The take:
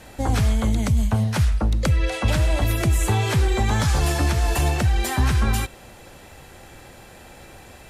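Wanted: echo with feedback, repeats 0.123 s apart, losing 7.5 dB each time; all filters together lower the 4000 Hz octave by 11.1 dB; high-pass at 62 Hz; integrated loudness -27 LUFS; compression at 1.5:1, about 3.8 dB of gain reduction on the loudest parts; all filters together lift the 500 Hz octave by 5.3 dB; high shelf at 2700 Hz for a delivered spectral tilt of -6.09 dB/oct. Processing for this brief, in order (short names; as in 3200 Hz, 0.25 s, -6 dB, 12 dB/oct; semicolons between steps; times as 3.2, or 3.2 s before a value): HPF 62 Hz; bell 500 Hz +7.5 dB; high shelf 2700 Hz -8.5 dB; bell 4000 Hz -7.5 dB; compressor 1.5:1, threshold -26 dBFS; feedback echo 0.123 s, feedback 42%, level -7.5 dB; gain -2 dB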